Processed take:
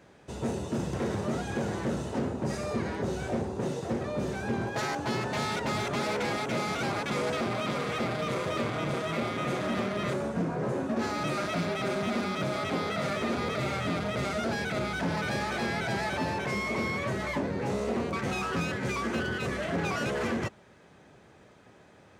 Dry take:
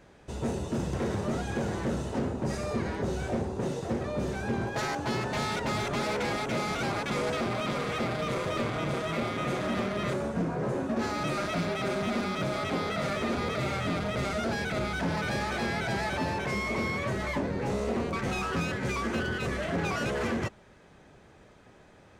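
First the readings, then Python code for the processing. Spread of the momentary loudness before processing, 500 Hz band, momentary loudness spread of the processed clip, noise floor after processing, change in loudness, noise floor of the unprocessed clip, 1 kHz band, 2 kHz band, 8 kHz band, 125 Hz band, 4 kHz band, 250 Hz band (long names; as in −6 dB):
2 LU, 0.0 dB, 2 LU, −56 dBFS, 0.0 dB, −56 dBFS, 0.0 dB, 0.0 dB, 0.0 dB, −1.0 dB, 0.0 dB, 0.0 dB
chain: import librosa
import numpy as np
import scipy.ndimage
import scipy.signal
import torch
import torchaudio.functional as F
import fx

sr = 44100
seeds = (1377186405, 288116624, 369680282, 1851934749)

y = scipy.signal.sosfilt(scipy.signal.butter(2, 83.0, 'highpass', fs=sr, output='sos'), x)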